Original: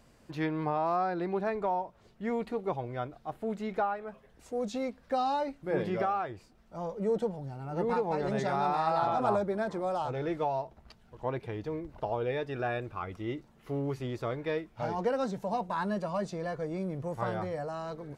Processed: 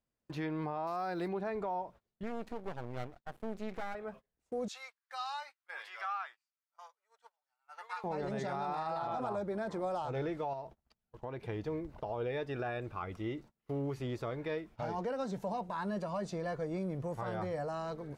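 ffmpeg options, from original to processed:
-filter_complex "[0:a]asettb=1/sr,asplit=3[s0][s1][s2];[s0]atrim=end=0.874[s3];[s1]atrim=start=0.87:end=1.28,asetpts=PTS-STARTPTS,afade=t=in:d=0.004:c=qsin,afade=t=out:st=0.406:d=0.004:c=qsin,aemphasis=mode=production:type=75fm[s4];[s2]atrim=start=1.276[s5];[s3][s4]acrossfade=d=0.004:c1=hsin:c2=qsin[s6];[s6][s5]acrossfade=d=0.004:c1=qsin:c2=hsin,asettb=1/sr,asplit=3[s7][s8][s9];[s7]atrim=end=2.234[s10];[s8]atrim=start=2.23:end=3.95,asetpts=PTS-STARTPTS,afade=t=in:d=0.004:c=qsin,afade=t=out:st=1.716:d=0.004:c=qsin,aeval=exprs='max(val(0),0)':c=same[s11];[s9]atrim=start=3.946[s12];[s10][s11]acrossfade=d=0.004:c1=hsin:c2=qsin[s13];[s13][s12]acrossfade=d=0.004:c1=qsin:c2=hsin,asettb=1/sr,asplit=3[s14][s15][s16];[s14]atrim=end=4.684[s17];[s15]atrim=start=4.68:end=8.04,asetpts=PTS-STARTPTS,afade=t=in:d=0.004:c=qsin,afade=t=out:st=3.356:d=0.004:c=qsin,highpass=f=1100:w=0.5412,highpass=f=1100:w=1.3066[s18];[s16]atrim=start=8.036[s19];[s17][s18]acrossfade=d=0.004:c1=hsin:c2=qsin[s20];[s20][s19]acrossfade=d=0.004:c1=qsin:c2=hsin,asettb=1/sr,asplit=3[s21][s22][s23];[s21]atrim=end=10.534[s24];[s22]atrim=start=10.53:end=11.48,asetpts=PTS-STARTPTS,afade=t=in:d=0.004:c=qsin,afade=t=out:st=0.946:d=0.004:c=qsin,acompressor=threshold=0.0158:ratio=6:attack=3.2:release=140:knee=1:detection=peak[s25];[s23]atrim=start=11.476[s26];[s24][s25]acrossfade=d=0.004:c1=hsin:c2=qsin[s27];[s27][s26]acrossfade=d=0.004:c1=qsin:c2=hsin,agate=range=0.0398:threshold=0.00355:ratio=16:detection=peak,alimiter=level_in=1.5:limit=0.0631:level=0:latency=1:release=111,volume=0.668,volume=0.891"

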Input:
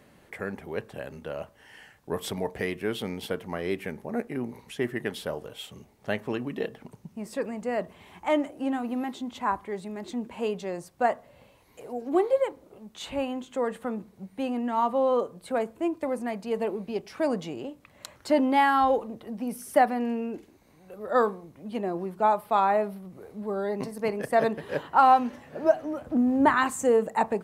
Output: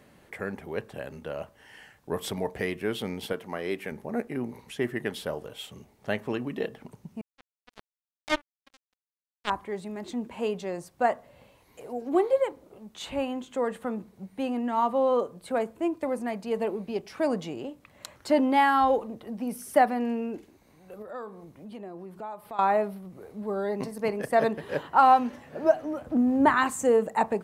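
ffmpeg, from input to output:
-filter_complex "[0:a]asettb=1/sr,asplit=3[s0][s1][s2];[s0]atrim=end=3.334[s3];[s1]atrim=start=3.33:end=3.92,asetpts=PTS-STARTPTS,afade=t=in:d=0.004:c=qsin,afade=t=out:st=0.586:d=0.004:c=qsin,highpass=f=240:p=1[s4];[s2]atrim=start=3.916[s5];[s3][s4]acrossfade=d=0.004:c1=hsin:c2=qsin[s6];[s6][s5]acrossfade=d=0.004:c1=qsin:c2=hsin,asettb=1/sr,asplit=3[s7][s8][s9];[s7]atrim=end=7.214[s10];[s8]atrim=start=7.21:end=9.5,asetpts=PTS-STARTPTS,afade=t=in:d=0.004:c=qsin,afade=t=out:st=2.286:d=0.004:c=qsin,acrusher=bits=2:mix=0:aa=0.5[s11];[s9]atrim=start=9.496[s12];[s10][s11]acrossfade=d=0.004:c1=hsin:c2=qsin[s13];[s13][s12]acrossfade=d=0.004:c1=qsin:c2=hsin,asettb=1/sr,asplit=3[s14][s15][s16];[s14]atrim=end=21.024[s17];[s15]atrim=start=21.02:end=22.59,asetpts=PTS-STARTPTS,afade=t=in:d=0.004:c=qsin,afade=t=out:st=1.566:d=0.004:c=qsin,acompressor=threshold=0.00794:ratio=2.5:attack=3.2:release=140:knee=1:detection=peak[s18];[s16]atrim=start=22.586[s19];[s17][s18]acrossfade=d=0.004:c1=hsin:c2=qsin[s20];[s20][s19]acrossfade=d=0.004:c1=qsin:c2=hsin"

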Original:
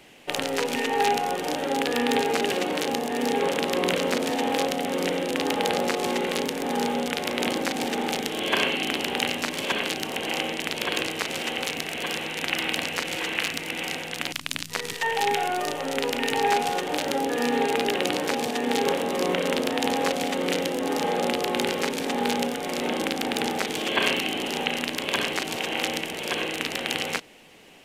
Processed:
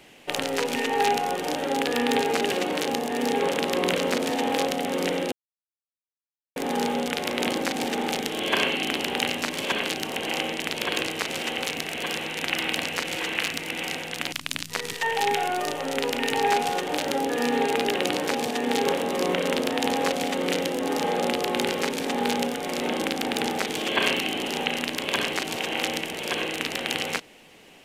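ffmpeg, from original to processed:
-filter_complex "[0:a]asplit=3[s0][s1][s2];[s0]atrim=end=5.32,asetpts=PTS-STARTPTS,afade=t=out:st=5.316:d=0.004:c=hsin[s3];[s1]atrim=start=5.32:end=6.56,asetpts=PTS-STARTPTS,volume=0[s4];[s2]atrim=start=6.56,asetpts=PTS-STARTPTS,afade=t=in:d=0.004:c=hsin[s5];[s3][s4][s5]concat=n=3:v=0:a=1"

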